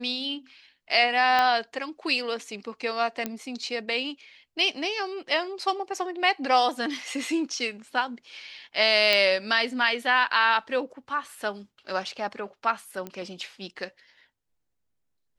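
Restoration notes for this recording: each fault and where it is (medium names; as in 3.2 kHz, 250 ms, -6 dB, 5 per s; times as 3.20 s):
1.39 s: pop -11 dBFS
3.26 s: pop -14 dBFS
9.13 s: pop -9 dBFS
13.07 s: pop -21 dBFS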